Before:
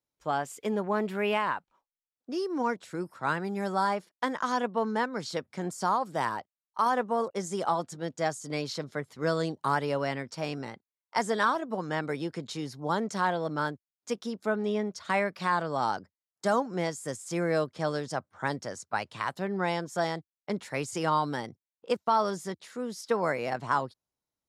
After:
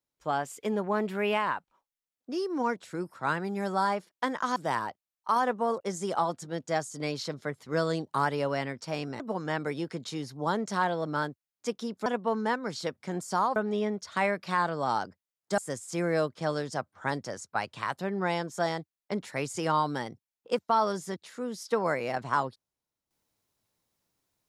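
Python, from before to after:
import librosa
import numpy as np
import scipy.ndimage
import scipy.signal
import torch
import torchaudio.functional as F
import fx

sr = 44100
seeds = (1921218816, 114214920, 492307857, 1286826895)

y = fx.edit(x, sr, fx.move(start_s=4.56, length_s=1.5, to_s=14.49),
    fx.cut(start_s=10.7, length_s=0.93),
    fx.cut(start_s=16.51, length_s=0.45), tone=tone)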